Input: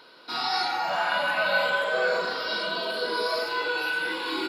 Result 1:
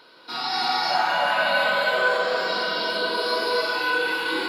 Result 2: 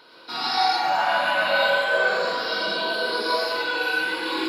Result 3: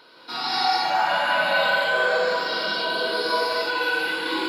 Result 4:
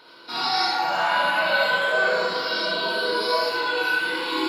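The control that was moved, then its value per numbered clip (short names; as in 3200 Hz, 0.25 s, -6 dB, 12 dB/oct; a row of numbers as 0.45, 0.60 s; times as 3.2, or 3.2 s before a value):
non-linear reverb, gate: 0.36, 0.16, 0.24, 0.1 s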